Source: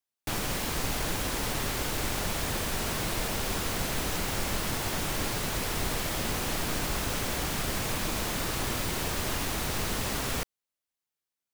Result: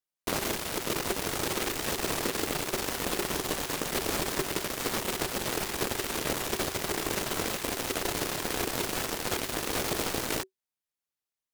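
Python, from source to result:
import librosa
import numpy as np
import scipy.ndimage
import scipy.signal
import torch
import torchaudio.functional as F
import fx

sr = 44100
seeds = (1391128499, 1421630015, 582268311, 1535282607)

y = fx.cheby_harmonics(x, sr, harmonics=(4,), levels_db=(-7,), full_scale_db=-16.5)
y = y * np.sin(2.0 * np.pi * 380.0 * np.arange(len(y)) / sr)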